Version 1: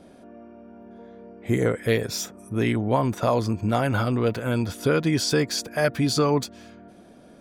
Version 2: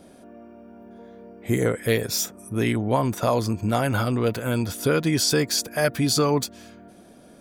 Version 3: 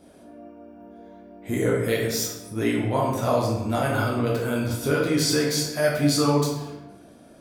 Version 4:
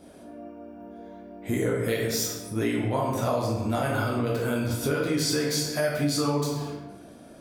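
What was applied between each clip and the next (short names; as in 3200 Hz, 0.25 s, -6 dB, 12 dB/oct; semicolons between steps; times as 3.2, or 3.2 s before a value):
high shelf 7300 Hz +11.5 dB
reverb RT60 1.0 s, pre-delay 8 ms, DRR -3.5 dB; gain -5.5 dB
compressor 3:1, threshold -26 dBFS, peak gain reduction 8.5 dB; gain +2 dB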